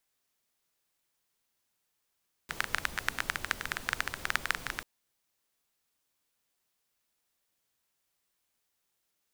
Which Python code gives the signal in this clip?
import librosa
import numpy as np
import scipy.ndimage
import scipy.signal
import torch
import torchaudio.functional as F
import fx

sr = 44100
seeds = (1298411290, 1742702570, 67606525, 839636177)

y = fx.rain(sr, seeds[0], length_s=2.34, drops_per_s=14.0, hz=1600.0, bed_db=-9.0)